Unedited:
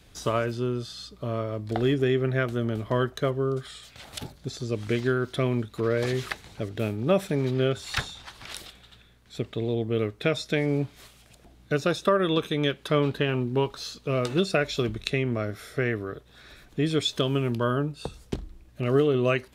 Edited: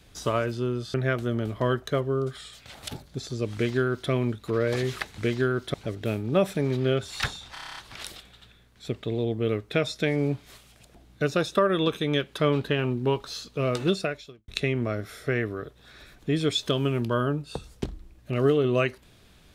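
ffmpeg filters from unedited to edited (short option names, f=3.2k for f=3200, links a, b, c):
-filter_complex "[0:a]asplit=13[a][b][c][d][e][f][g][h][i][j][k][l][m];[a]atrim=end=0.942[n];[b]atrim=start=2.238:end=6.482[o];[c]atrim=start=4.838:end=5.402[p];[d]atrim=start=6.478:end=8.302[q];[e]atrim=start=8.268:end=8.302[r];[f]atrim=start=8.268:end=8.302[s];[g]atrim=start=8.268:end=8.302[t];[h]atrim=start=8.268:end=8.302[u];[i]atrim=start=8.268:end=8.302[v];[j]atrim=start=8.268:end=8.302[w];[k]atrim=start=8.268:end=8.302[x];[l]atrim=start=8.268:end=14.98,asetpts=PTS-STARTPTS,afade=t=out:st=6.162:d=0.55:c=qua[y];[m]atrim=start=14.98,asetpts=PTS-STARTPTS,afade=t=in:d=0.004:c=hsin[z];[n][o]acrossfade=d=0.004:c1=hsin:c2=hsin[aa];[aa][p]acrossfade=d=0.004:c1=hsin:c2=hsin[ab];[ab][q]acrossfade=d=0.004:c1=hsin:c2=hsin[ac];[ac][r]acrossfade=d=0.004:c1=hsin:c2=hsin[ad];[ad][s]acrossfade=d=0.004:c1=hsin:c2=hsin[ae];[ae][t]acrossfade=d=0.004:c1=hsin:c2=hsin[af];[af][u]acrossfade=d=0.004:c1=hsin:c2=hsin[ag];[ag][v]acrossfade=d=0.004:c1=hsin:c2=hsin[ah];[ah][w]acrossfade=d=0.004:c1=hsin:c2=hsin[ai];[ai][x]acrossfade=d=0.004:c1=hsin:c2=hsin[aj];[y][z]concat=n=2:v=0:a=1[ak];[aj][ak]acrossfade=d=0.004:c1=hsin:c2=hsin"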